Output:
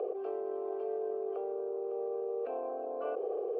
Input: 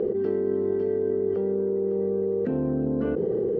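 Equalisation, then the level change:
formant filter a
high-pass filter 400 Hz 24 dB per octave
+8.5 dB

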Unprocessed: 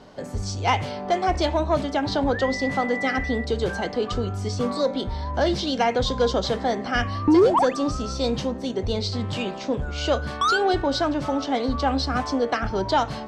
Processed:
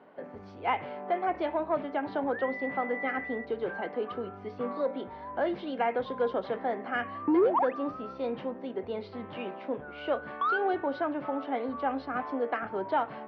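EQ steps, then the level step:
high-pass filter 270 Hz 12 dB per octave
low-pass filter 2,400 Hz 24 dB per octave
−6.5 dB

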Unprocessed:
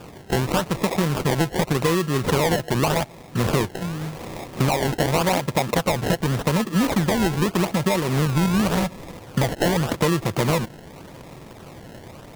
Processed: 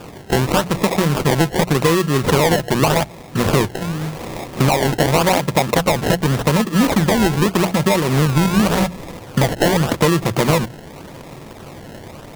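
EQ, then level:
mains-hum notches 60/120/180 Hz
+5.5 dB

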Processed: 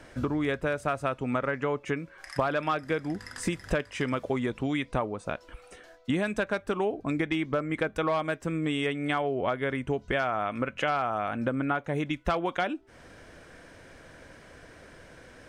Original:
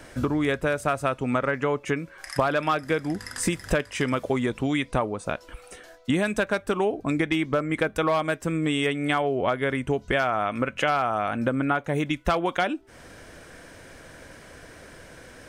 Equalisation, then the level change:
high-shelf EQ 8,300 Hz −11 dB
−4.0 dB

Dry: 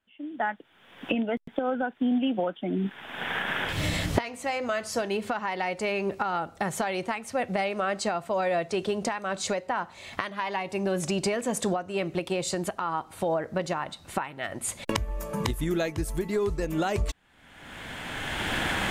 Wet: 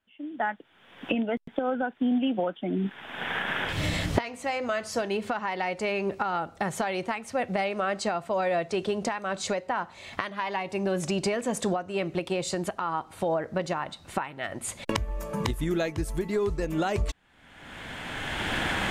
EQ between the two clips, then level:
high-shelf EQ 10,000 Hz −7.5 dB
0.0 dB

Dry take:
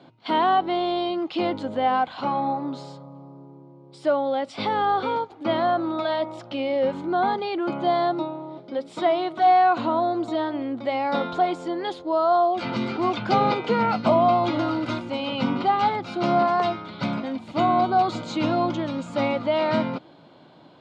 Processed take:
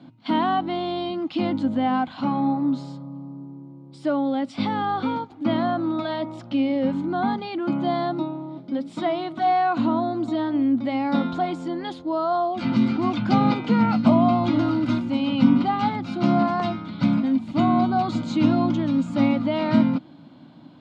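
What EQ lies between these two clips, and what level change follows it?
low shelf with overshoot 330 Hz +6.5 dB, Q 3
−2.0 dB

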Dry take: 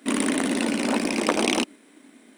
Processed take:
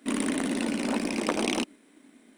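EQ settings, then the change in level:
low-shelf EQ 140 Hz +9 dB
−6.0 dB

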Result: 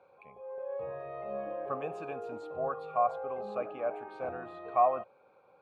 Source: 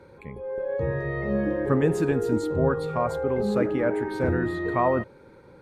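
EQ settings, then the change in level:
formant filter a
parametric band 330 Hz −7 dB 0.82 octaves
+4.5 dB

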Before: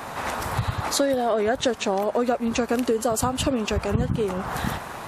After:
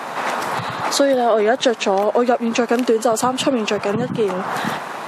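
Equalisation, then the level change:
Bessel high-pass filter 240 Hz, order 8
high-shelf EQ 8,700 Hz −11.5 dB
+7.5 dB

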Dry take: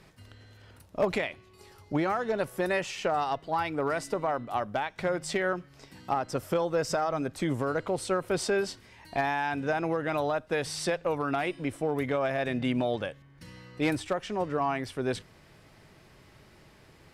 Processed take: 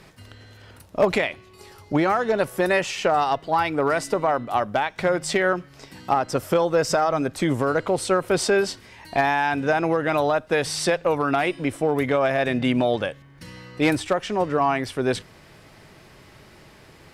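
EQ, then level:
low-shelf EQ 190 Hz −3 dB
+8.0 dB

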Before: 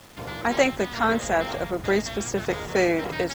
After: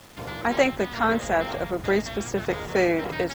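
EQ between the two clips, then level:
dynamic equaliser 6,800 Hz, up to −5 dB, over −45 dBFS, Q 0.85
0.0 dB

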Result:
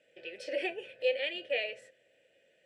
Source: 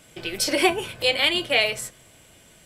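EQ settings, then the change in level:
formant filter e
Butterworth low-pass 11,000 Hz
−2.0 dB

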